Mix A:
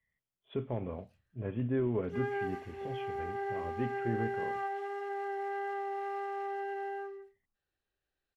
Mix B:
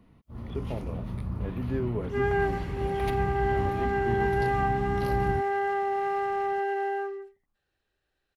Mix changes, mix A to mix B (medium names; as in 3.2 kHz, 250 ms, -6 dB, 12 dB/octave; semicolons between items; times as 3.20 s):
first sound: unmuted; second sound +9.0 dB